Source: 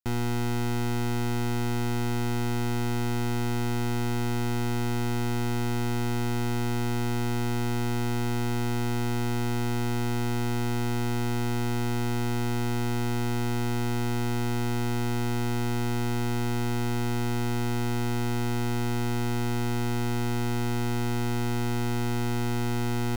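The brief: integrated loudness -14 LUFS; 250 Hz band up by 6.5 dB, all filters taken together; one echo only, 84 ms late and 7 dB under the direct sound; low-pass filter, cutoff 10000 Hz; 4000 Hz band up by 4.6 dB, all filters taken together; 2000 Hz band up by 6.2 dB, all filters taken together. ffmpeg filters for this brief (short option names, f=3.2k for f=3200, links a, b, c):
-af "lowpass=10k,equalizer=f=250:t=o:g=7,equalizer=f=2k:t=o:g=7,equalizer=f=4k:t=o:g=3.5,aecho=1:1:84:0.447,volume=9dB"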